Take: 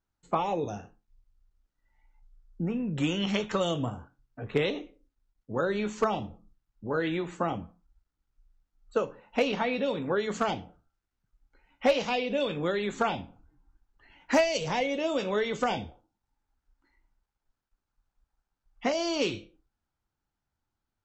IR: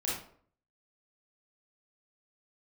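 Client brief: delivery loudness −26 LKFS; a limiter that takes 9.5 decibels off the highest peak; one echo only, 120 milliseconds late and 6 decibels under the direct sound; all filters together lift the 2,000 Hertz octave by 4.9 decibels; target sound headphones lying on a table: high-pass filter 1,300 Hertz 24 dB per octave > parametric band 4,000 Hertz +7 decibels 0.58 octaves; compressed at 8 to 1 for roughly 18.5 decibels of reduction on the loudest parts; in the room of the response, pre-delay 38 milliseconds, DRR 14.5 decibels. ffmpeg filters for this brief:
-filter_complex "[0:a]equalizer=frequency=2000:width_type=o:gain=5.5,acompressor=threshold=-38dB:ratio=8,alimiter=level_in=9.5dB:limit=-24dB:level=0:latency=1,volume=-9.5dB,aecho=1:1:120:0.501,asplit=2[link_01][link_02];[1:a]atrim=start_sample=2205,adelay=38[link_03];[link_02][link_03]afir=irnorm=-1:irlink=0,volume=-19.5dB[link_04];[link_01][link_04]amix=inputs=2:normalize=0,highpass=frequency=1300:width=0.5412,highpass=frequency=1300:width=1.3066,equalizer=frequency=4000:width_type=o:width=0.58:gain=7,volume=20.5dB"

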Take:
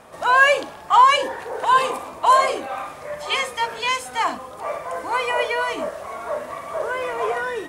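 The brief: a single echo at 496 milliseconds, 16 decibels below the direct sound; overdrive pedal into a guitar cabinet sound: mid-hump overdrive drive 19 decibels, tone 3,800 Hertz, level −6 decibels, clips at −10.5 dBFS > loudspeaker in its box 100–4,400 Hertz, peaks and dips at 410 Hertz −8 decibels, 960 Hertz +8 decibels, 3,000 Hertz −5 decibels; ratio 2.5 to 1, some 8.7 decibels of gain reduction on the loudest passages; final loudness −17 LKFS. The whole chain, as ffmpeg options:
ffmpeg -i in.wav -filter_complex "[0:a]acompressor=threshold=-22dB:ratio=2.5,aecho=1:1:496:0.158,asplit=2[link_01][link_02];[link_02]highpass=frequency=720:poles=1,volume=19dB,asoftclip=type=tanh:threshold=-10.5dB[link_03];[link_01][link_03]amix=inputs=2:normalize=0,lowpass=frequency=3800:poles=1,volume=-6dB,highpass=100,equalizer=frequency=410:width_type=q:width=4:gain=-8,equalizer=frequency=960:width_type=q:width=4:gain=8,equalizer=frequency=3000:width_type=q:width=4:gain=-5,lowpass=frequency=4400:width=0.5412,lowpass=frequency=4400:width=1.3066,volume=-0.5dB" out.wav

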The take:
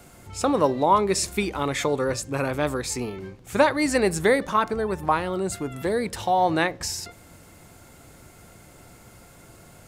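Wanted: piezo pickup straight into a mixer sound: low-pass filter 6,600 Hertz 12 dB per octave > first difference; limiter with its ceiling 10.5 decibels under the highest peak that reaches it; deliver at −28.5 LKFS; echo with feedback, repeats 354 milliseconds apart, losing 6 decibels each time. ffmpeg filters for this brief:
ffmpeg -i in.wav -af "alimiter=limit=-16dB:level=0:latency=1,lowpass=6600,aderivative,aecho=1:1:354|708|1062|1416|1770|2124:0.501|0.251|0.125|0.0626|0.0313|0.0157,volume=10dB" out.wav

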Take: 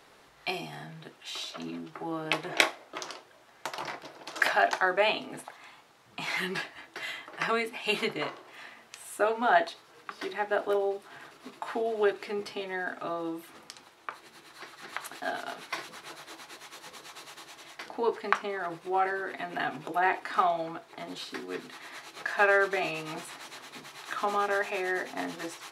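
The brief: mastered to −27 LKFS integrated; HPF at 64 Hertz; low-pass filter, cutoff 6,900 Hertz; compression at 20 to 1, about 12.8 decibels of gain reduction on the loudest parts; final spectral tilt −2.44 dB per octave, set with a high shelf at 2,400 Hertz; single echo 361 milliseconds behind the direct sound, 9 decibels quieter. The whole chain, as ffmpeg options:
ffmpeg -i in.wav -af "highpass=64,lowpass=6900,highshelf=frequency=2400:gain=7.5,acompressor=threshold=-29dB:ratio=20,aecho=1:1:361:0.355,volume=8.5dB" out.wav

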